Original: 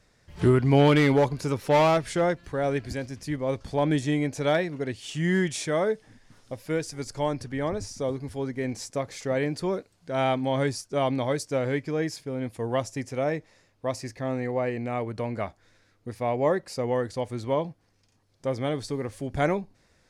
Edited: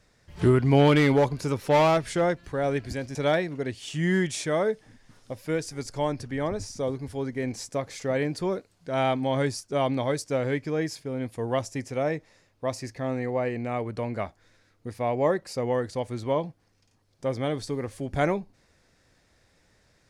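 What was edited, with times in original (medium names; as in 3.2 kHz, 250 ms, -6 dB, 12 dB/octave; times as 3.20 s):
3.15–4.36 s: delete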